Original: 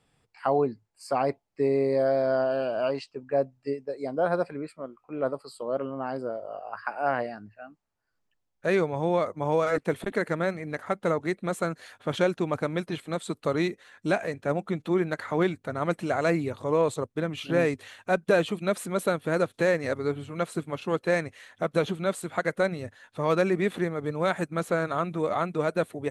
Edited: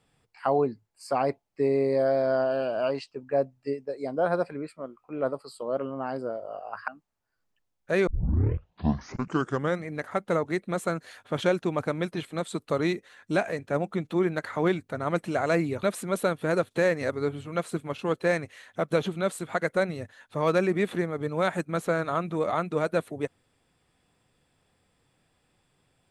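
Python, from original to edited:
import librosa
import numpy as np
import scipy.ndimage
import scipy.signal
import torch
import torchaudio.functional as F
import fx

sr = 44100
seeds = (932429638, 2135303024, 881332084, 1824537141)

y = fx.edit(x, sr, fx.cut(start_s=6.88, length_s=0.75),
    fx.tape_start(start_s=8.82, length_s=1.78),
    fx.cut(start_s=16.58, length_s=2.08), tone=tone)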